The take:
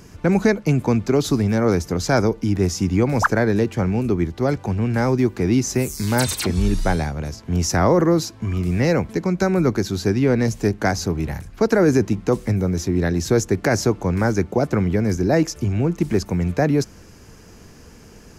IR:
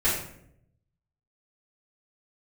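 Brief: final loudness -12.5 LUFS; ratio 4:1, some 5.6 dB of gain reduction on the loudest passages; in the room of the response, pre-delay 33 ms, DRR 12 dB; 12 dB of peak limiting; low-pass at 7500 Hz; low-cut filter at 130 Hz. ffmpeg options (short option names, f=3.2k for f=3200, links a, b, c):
-filter_complex "[0:a]highpass=130,lowpass=7.5k,acompressor=threshold=-18dB:ratio=4,alimiter=limit=-20.5dB:level=0:latency=1,asplit=2[a][b];[1:a]atrim=start_sample=2205,adelay=33[c];[b][c]afir=irnorm=-1:irlink=0,volume=-25dB[d];[a][d]amix=inputs=2:normalize=0,volume=16.5dB"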